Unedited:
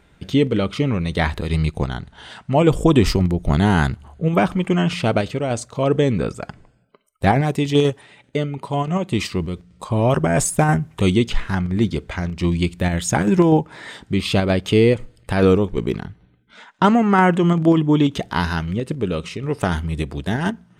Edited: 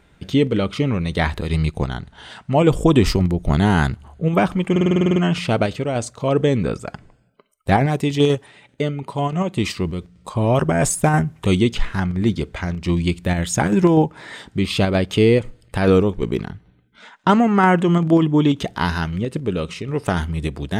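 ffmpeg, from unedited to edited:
-filter_complex "[0:a]asplit=10[a][b][c][d][e][f][g][h][i][j];[a]atrim=end=4.762[k];[b]atrim=start=4.708:end=4.762[l];[c]atrim=start=4.708:end=4.762[m];[d]atrim=start=4.708:end=4.762[n];[e]atrim=start=4.708:end=4.762[o];[f]atrim=start=4.708:end=4.762[p];[g]atrim=start=4.708:end=4.762[q];[h]atrim=start=4.708:end=4.762[r];[i]atrim=start=4.708:end=4.762[s];[j]atrim=start=4.708[t];[k][l]acrossfade=d=0.004:c1=hsin:c2=hsin[u];[u][m]acrossfade=d=0.004:c1=hsin:c2=hsin[v];[v][n]acrossfade=d=0.004:c1=hsin:c2=hsin[w];[w][o]acrossfade=d=0.004:c1=hsin:c2=hsin[x];[x][p]acrossfade=d=0.004:c1=hsin:c2=hsin[y];[y][q]acrossfade=d=0.004:c1=hsin:c2=hsin[z];[z][r]acrossfade=d=0.004:c1=hsin:c2=hsin[aa];[aa][s]acrossfade=d=0.004:c1=hsin:c2=hsin[ab];[ab][t]acrossfade=d=0.004:c1=hsin:c2=hsin"

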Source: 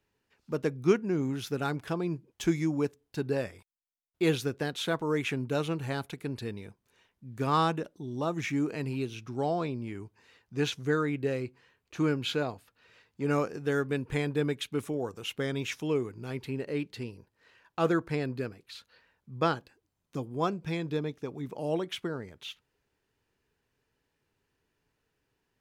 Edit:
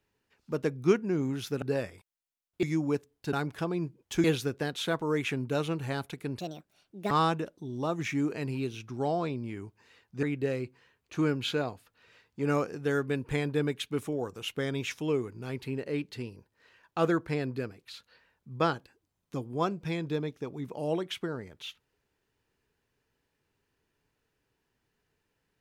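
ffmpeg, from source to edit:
-filter_complex "[0:a]asplit=8[a][b][c][d][e][f][g][h];[a]atrim=end=1.622[i];[b]atrim=start=3.228:end=4.242[j];[c]atrim=start=2.528:end=3.232[k];[d]atrim=start=1.618:end=2.532[l];[e]atrim=start=4.238:end=6.404[m];[f]atrim=start=6.4:end=7.49,asetpts=PTS-STARTPTS,asetrate=67914,aresample=44100[n];[g]atrim=start=7.486:end=10.612[o];[h]atrim=start=11.038[p];[i][j]acrossfade=d=0.004:c1=hsin:c2=hsin[q];[q][k]acrossfade=d=0.004:c1=hsin:c2=hsin[r];[r][l]acrossfade=d=0.004:c1=hsin:c2=hsin[s];[s][m]acrossfade=d=0.004:c1=hsin:c2=hsin[t];[t][n]acrossfade=d=0.004:c1=hsin:c2=hsin[u];[u][o]acrossfade=d=0.004:c1=hsin:c2=hsin[v];[v][p]acrossfade=d=0.004:c1=hsin:c2=hsin"

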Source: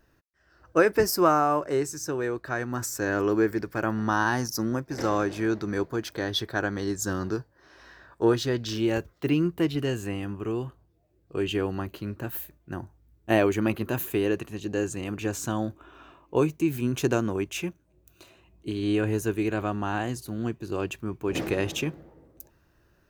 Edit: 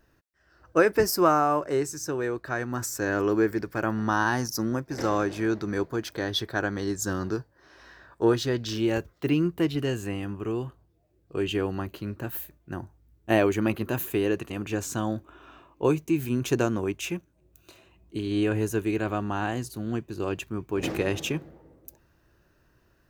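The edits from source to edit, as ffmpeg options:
-filter_complex "[0:a]asplit=2[a][b];[a]atrim=end=14.502[c];[b]atrim=start=15.018[d];[c][d]acrossfade=d=0.004:c1=hsin:c2=hsin"

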